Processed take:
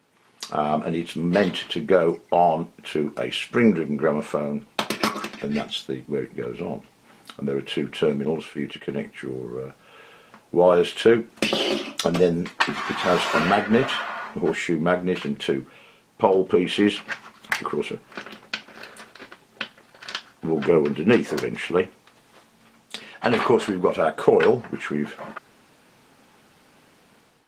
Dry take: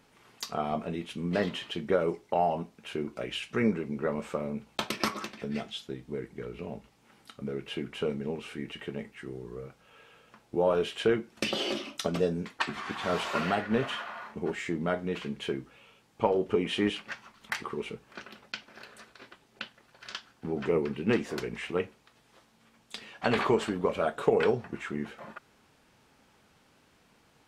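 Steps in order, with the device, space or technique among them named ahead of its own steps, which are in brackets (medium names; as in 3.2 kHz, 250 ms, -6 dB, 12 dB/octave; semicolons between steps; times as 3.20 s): 8.25–8.90 s: expander -37 dBFS; video call (high-pass 130 Hz 12 dB/octave; level rider gain up to 10 dB; Opus 24 kbps 48 kHz)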